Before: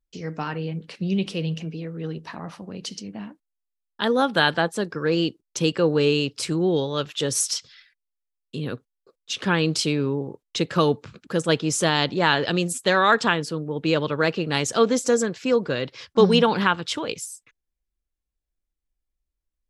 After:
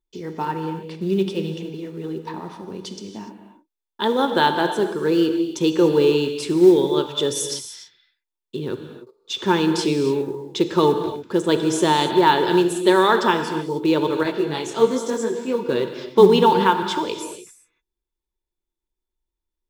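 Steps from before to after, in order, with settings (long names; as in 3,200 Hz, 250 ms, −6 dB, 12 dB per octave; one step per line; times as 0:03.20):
hollow resonant body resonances 370/910/3,500 Hz, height 15 dB, ringing for 40 ms
in parallel at −10 dB: floating-point word with a short mantissa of 2 bits
on the sum: reverb whose tail is shaped and stops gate 320 ms flat, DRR 6.5 dB
0:14.23–0:15.69: micro pitch shift up and down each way 38 cents
level −6 dB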